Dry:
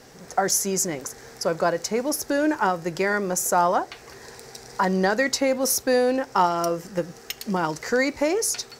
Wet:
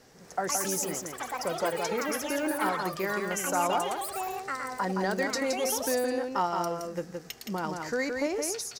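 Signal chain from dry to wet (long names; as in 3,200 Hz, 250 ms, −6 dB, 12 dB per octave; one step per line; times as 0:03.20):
single-tap delay 169 ms −4.5 dB
delay with pitch and tempo change per echo 239 ms, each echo +7 semitones, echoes 3, each echo −6 dB
level −8.5 dB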